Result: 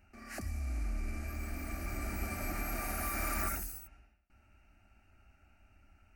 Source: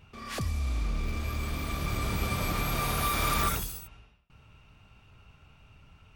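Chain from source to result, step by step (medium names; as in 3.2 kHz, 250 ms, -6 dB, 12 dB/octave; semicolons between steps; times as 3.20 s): 0.69–1.28 s: one-bit delta coder 64 kbps, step -46 dBFS; static phaser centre 700 Hz, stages 8; trim -4 dB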